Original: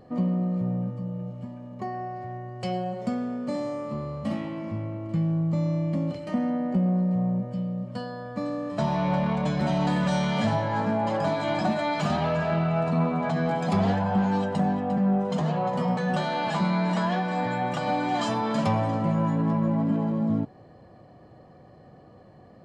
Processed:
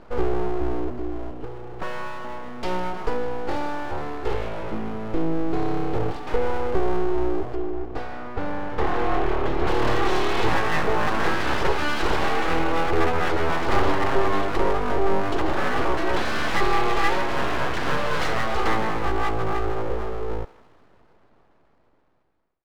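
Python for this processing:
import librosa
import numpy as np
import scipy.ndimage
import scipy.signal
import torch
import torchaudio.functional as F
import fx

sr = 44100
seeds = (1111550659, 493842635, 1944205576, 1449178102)

y = fx.fade_out_tail(x, sr, length_s=5.01)
y = scipy.signal.sosfilt(scipy.signal.butter(2, 4400.0, 'lowpass', fs=sr, output='sos'), y)
y = fx.peak_eq(y, sr, hz=240.0, db=3.0, octaves=0.77)
y = fx.small_body(y, sr, hz=(1000.0, 2800.0), ring_ms=45, db=8)
y = np.abs(y)
y = fx.high_shelf(y, sr, hz=3300.0, db=-11.0, at=(7.55, 9.67))
y = fx.echo_thinned(y, sr, ms=156, feedback_pct=61, hz=1200.0, wet_db=-14.0)
y = y * librosa.db_to_amplitude(5.0)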